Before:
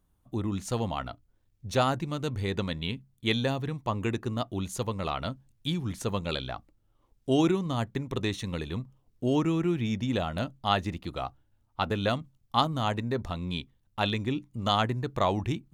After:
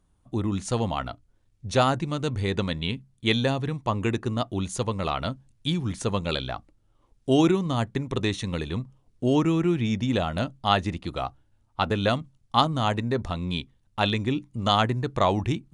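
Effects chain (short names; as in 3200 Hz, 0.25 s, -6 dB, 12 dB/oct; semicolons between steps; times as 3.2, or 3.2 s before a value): brick-wall FIR low-pass 11000 Hz; gain +4 dB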